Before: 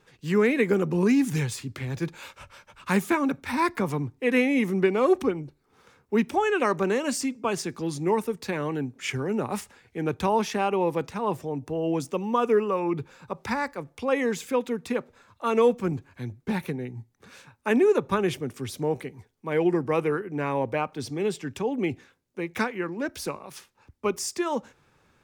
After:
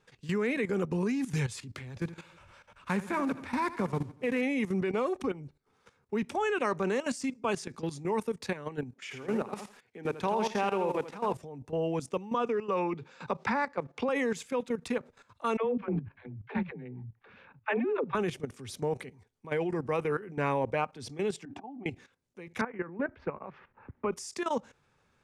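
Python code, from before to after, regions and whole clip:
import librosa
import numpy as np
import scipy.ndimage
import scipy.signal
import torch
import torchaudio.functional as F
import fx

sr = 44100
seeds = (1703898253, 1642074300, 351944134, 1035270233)

y = fx.chain(x, sr, fx.block_float(bits=5),
    fx.high_shelf(hz=3300.0, db=-7.5),
    fx.echo_feedback(ms=79, feedback_pct=56, wet_db=-14), at=(1.95, 4.43))
y = fx.chain(y, sr, fx.highpass(hz=190.0, slope=12),
    fx.peak_eq(hz=9100.0, db=-6.0, octaves=1.2),
    fx.echo_crushed(ms=82, feedback_pct=35, bits=8, wet_db=-6.0), at=(8.94, 11.34))
y = fx.chain(y, sr, fx.bandpass_edges(low_hz=130.0, high_hz=5500.0),
    fx.band_squash(depth_pct=100), at=(12.34, 14.09))
y = fx.chain(y, sr, fx.lowpass(hz=2900.0, slope=24),
    fx.dispersion(late='lows', ms=99.0, hz=310.0), at=(15.57, 18.15))
y = fx.chain(y, sr, fx.auto_swell(attack_ms=328.0),
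    fx.double_bandpass(hz=470.0, octaves=1.3),
    fx.env_flatten(amount_pct=70), at=(21.45, 21.86))
y = fx.chain(y, sr, fx.lowpass(hz=2000.0, slope=24),
    fx.band_squash(depth_pct=70), at=(22.61, 24.12))
y = fx.level_steps(y, sr, step_db=14)
y = scipy.signal.sosfilt(scipy.signal.butter(4, 11000.0, 'lowpass', fs=sr, output='sos'), y)
y = fx.peak_eq(y, sr, hz=320.0, db=-5.5, octaves=0.29)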